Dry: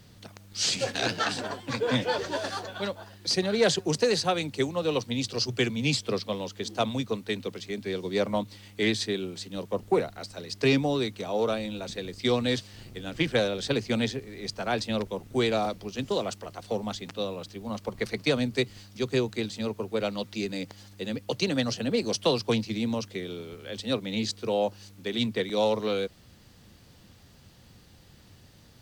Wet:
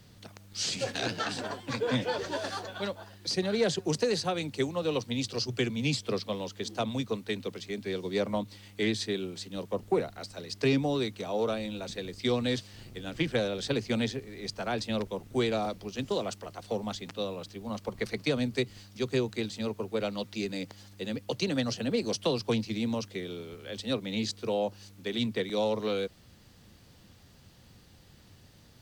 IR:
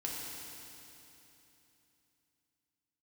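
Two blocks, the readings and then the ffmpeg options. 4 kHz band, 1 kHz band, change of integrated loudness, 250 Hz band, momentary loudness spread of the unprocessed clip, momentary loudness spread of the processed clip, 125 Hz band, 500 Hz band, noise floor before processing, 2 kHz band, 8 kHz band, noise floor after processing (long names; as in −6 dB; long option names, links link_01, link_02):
−4.0 dB, −4.0 dB, −3.0 dB, −2.0 dB, 10 LU, 9 LU, −2.0 dB, −3.0 dB, −55 dBFS, −4.0 dB, −4.0 dB, −57 dBFS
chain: -filter_complex "[0:a]acrossover=split=450[link_01][link_02];[link_02]acompressor=threshold=-28dB:ratio=3[link_03];[link_01][link_03]amix=inputs=2:normalize=0,volume=-2dB"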